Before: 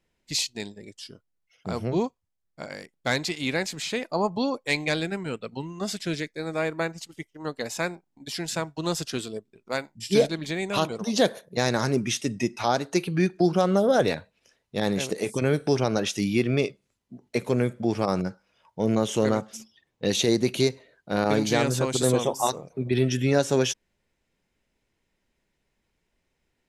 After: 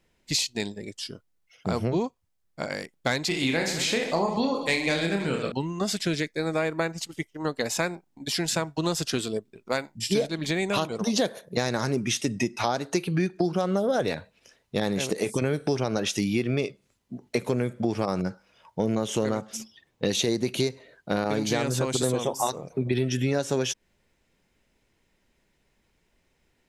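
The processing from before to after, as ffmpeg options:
ffmpeg -i in.wav -filter_complex "[0:a]asettb=1/sr,asplit=3[link_01][link_02][link_03];[link_01]atrim=end=3.284[link_04];[link_02]atrim=start=3.28:end=5.52,asetpts=PTS-STARTPTS,afade=type=in:duration=0.004:curve=qsin,afade=type=out:start_time=2.236:duration=0.004:curve=qsin,aecho=1:1:30|72|130.8|213.1|328.4|489.7:0.631|0.398|0.251|0.158|0.1|0.0631,atrim=end_sample=98784[link_05];[link_03]atrim=start=5.516[link_06];[link_04][link_05]acrossfade=duration=0.004:curve1=hsin:curve2=qsin[link_07];[link_07][link_06]acrossfade=duration=0.004:curve1=qsin:curve2=hsin,acompressor=threshold=-29dB:ratio=4,volume=6dB" out.wav

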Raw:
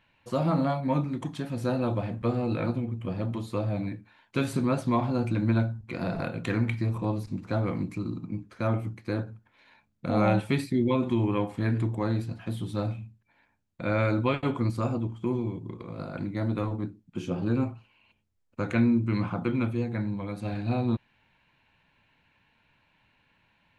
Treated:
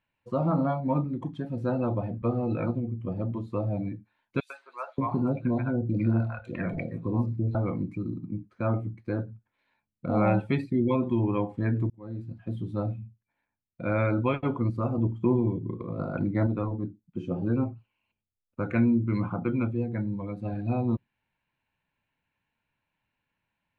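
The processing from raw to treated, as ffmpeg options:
ffmpeg -i in.wav -filter_complex "[0:a]asettb=1/sr,asplit=3[link_01][link_02][link_03];[link_01]atrim=end=4.404[link_04];[link_02]atrim=start=4.4:end=7.55,asetpts=PTS-STARTPTS,afade=type=in:duration=0.004:curve=qsin,afade=type=out:start_time=3.146:duration=0.004:curve=qsin,acrossover=split=680|3300[link_05][link_06][link_07];[link_06]adelay=100[link_08];[link_05]adelay=580[link_09];[link_09][link_08][link_07]amix=inputs=3:normalize=0,atrim=end_sample=138915[link_10];[link_03]atrim=start=7.546[link_11];[link_04][link_10]acrossfade=duration=0.004:curve1=hsin:curve2=qsin[link_12];[link_12][link_11]acrossfade=duration=0.004:curve1=qsin:curve2=hsin,asettb=1/sr,asplit=3[link_13][link_14][link_15];[link_13]atrim=end=14.984[link_16];[link_14]atrim=start=14.98:end=16.47,asetpts=PTS-STARTPTS,afade=type=in:duration=0.004:curve=qsin,afade=type=out:start_time=1.486:duration=0.004:curve=qsin,acontrast=27[link_17];[link_15]atrim=start=16.466[link_18];[link_16][link_17]acrossfade=duration=0.004:curve1=hsin:curve2=qsin[link_19];[link_19][link_18]acrossfade=duration=0.004:curve1=qsin:curve2=hsin,asplit=2[link_20][link_21];[link_20]atrim=end=11.9,asetpts=PTS-STARTPTS,afade=type=out:start_time=11.896:duration=0.004:curve=hsin[link_22];[link_21]atrim=start=11.9,asetpts=PTS-STARTPTS,afade=type=in:duration=0.64[link_23];[link_22][link_23]concat=n=2:v=0:a=1,lowpass=frequency=3500:poles=1,afftdn=noise_reduction=14:noise_floor=-39" out.wav

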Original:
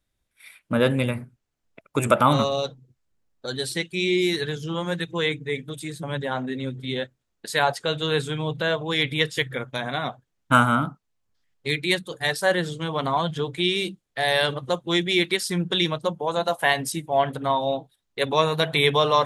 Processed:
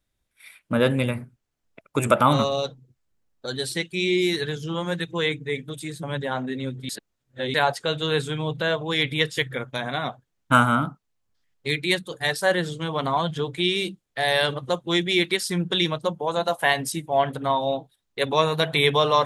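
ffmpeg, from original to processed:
ffmpeg -i in.wav -filter_complex "[0:a]asplit=3[link_01][link_02][link_03];[link_01]atrim=end=6.892[link_04];[link_02]atrim=start=6.888:end=7.542,asetpts=PTS-STARTPTS,areverse[link_05];[link_03]atrim=start=7.538[link_06];[link_04][link_05]acrossfade=duration=0.004:curve1=hsin:curve2=hsin[link_07];[link_07][link_06]acrossfade=duration=0.004:curve1=hsin:curve2=hsin" out.wav

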